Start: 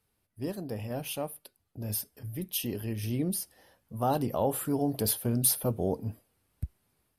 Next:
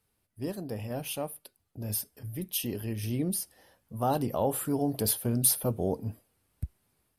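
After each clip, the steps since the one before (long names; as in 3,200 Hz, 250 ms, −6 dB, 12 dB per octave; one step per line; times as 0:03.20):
parametric band 8,600 Hz +2 dB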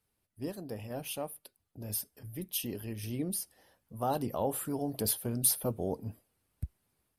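harmonic and percussive parts rebalanced harmonic −4 dB
level −2.5 dB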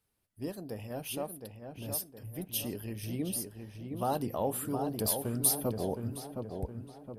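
feedback echo with a low-pass in the loop 716 ms, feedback 50%, low-pass 2,400 Hz, level −6 dB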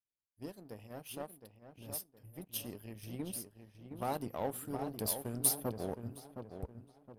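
power curve on the samples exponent 1.4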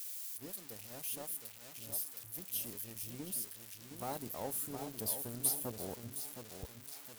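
spike at every zero crossing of −30.5 dBFS
level −5 dB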